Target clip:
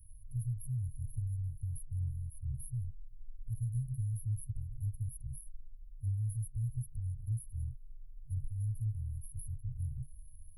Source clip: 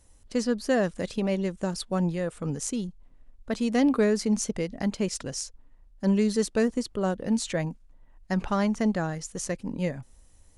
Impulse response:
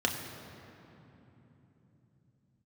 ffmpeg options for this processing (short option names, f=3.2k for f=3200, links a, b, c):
-filter_complex "[0:a]asplit=3[a][b][c];[b]asetrate=22050,aresample=44100,atempo=2,volume=-9dB[d];[c]asetrate=33038,aresample=44100,atempo=1.33484,volume=-16dB[e];[a][d][e]amix=inputs=3:normalize=0,afftfilt=real='re*(1-between(b*sr/4096,130,9800))':imag='im*(1-between(b*sr/4096,130,9800))':win_size=4096:overlap=0.75,acrossover=split=180|4600[f][g][h];[f]acompressor=threshold=-38dB:ratio=4[i];[h]acompressor=threshold=-54dB:ratio=4[j];[i][g][j]amix=inputs=3:normalize=0,volume=4dB"